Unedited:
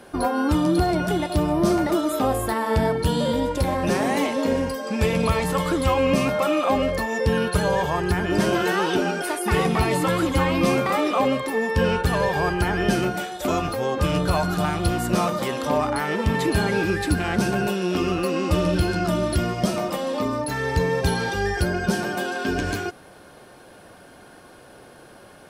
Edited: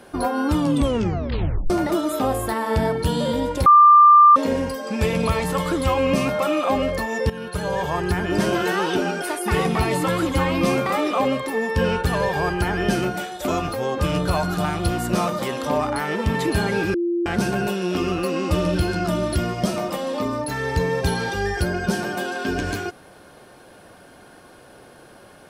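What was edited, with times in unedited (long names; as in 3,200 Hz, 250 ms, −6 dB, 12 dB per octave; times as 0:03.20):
0:00.59: tape stop 1.11 s
0:03.66–0:04.36: beep over 1,190 Hz −7 dBFS
0:07.30–0:07.95: fade in, from −14 dB
0:16.94–0:17.26: beep over 345 Hz −19 dBFS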